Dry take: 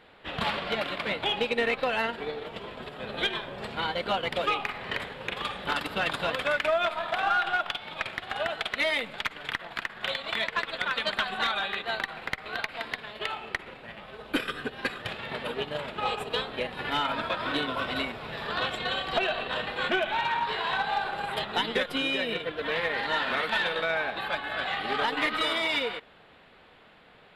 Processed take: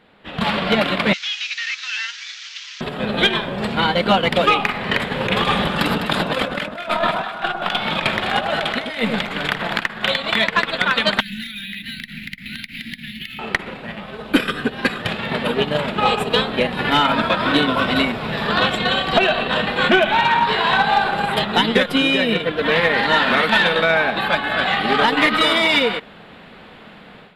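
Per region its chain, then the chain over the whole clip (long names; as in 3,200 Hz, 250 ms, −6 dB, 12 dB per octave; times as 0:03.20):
0:01.13–0:02.81: linear delta modulator 32 kbit/s, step −35.5 dBFS + Bessel high-pass filter 2,700 Hz, order 6
0:05.11–0:09.80: compressor whose output falls as the input rises −34 dBFS, ratio −0.5 + delay that swaps between a low-pass and a high-pass 102 ms, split 1,200 Hz, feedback 60%, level −4.5 dB
0:11.20–0:13.39: elliptic band-stop filter 250–2,000 Hz + downward compressor 5 to 1, threshold −39 dBFS + linearly interpolated sample-rate reduction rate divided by 3×
whole clip: parametric band 200 Hz +9 dB 0.8 octaves; automatic gain control gain up to 12.5 dB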